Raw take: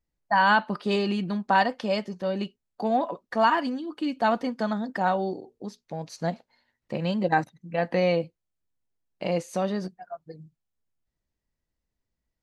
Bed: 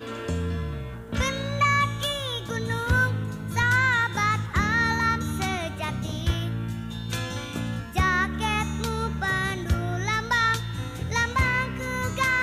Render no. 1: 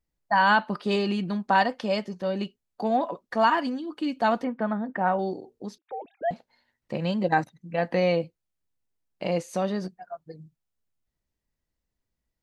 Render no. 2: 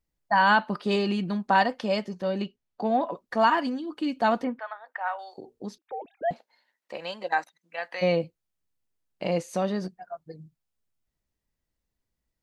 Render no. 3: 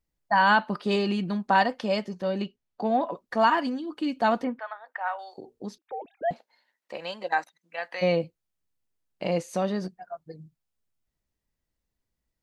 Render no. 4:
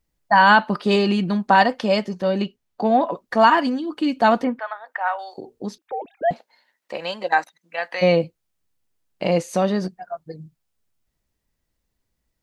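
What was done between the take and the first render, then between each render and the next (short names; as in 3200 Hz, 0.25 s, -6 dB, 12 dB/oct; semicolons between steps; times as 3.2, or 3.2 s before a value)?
4.44–5.19 LPF 2400 Hz 24 dB/oct; 5.78–6.31 sine-wave speech
2.42–3.11 air absorption 86 m; 4.59–5.38 Bessel high-pass 1100 Hz, order 6; 6.32–8.01 HPF 390 Hz -> 1200 Hz
nothing audible
gain +7 dB; limiter -3 dBFS, peak gain reduction 2 dB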